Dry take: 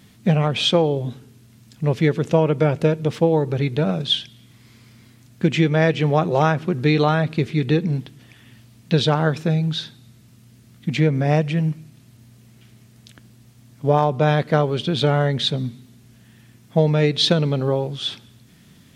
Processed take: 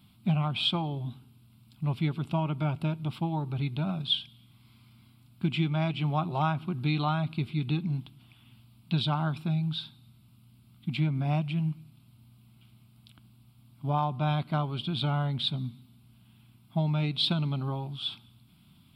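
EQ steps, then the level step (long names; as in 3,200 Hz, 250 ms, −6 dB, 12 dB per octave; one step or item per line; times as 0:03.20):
phaser with its sweep stopped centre 1,800 Hz, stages 6
−7.0 dB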